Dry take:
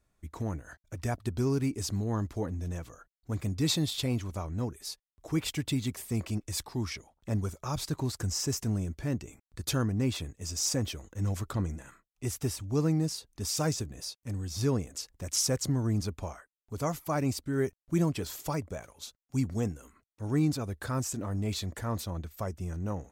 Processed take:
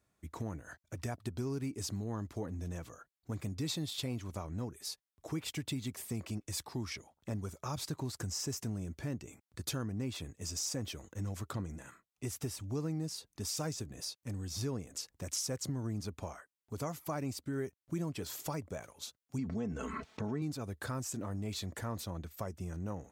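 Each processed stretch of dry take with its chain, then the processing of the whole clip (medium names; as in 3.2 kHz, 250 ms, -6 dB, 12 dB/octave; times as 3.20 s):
19.38–20.42 s: distance through air 150 m + comb 4.6 ms, depth 57% + level flattener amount 70%
whole clip: high-pass 86 Hz; compression 3:1, threshold -35 dBFS; trim -1 dB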